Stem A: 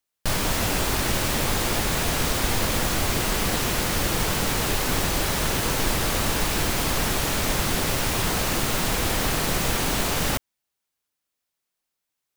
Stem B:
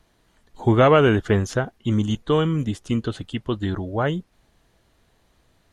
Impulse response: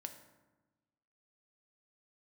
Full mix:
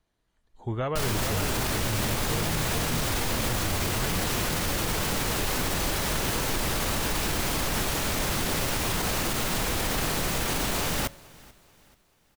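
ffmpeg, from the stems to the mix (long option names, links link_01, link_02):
-filter_complex "[0:a]adelay=700,volume=-3.5dB,asplit=3[link_01][link_02][link_03];[link_02]volume=-13dB[link_04];[link_03]volume=-23.5dB[link_05];[1:a]asubboost=boost=6.5:cutoff=130,volume=-14.5dB,asplit=2[link_06][link_07];[link_07]volume=-4dB[link_08];[2:a]atrim=start_sample=2205[link_09];[link_04][link_09]afir=irnorm=-1:irlink=0[link_10];[link_05][link_08]amix=inputs=2:normalize=0,aecho=0:1:435|870|1305|1740|2175|2610:1|0.41|0.168|0.0689|0.0283|0.0116[link_11];[link_01][link_06][link_10][link_11]amix=inputs=4:normalize=0,alimiter=limit=-17.5dB:level=0:latency=1:release=21"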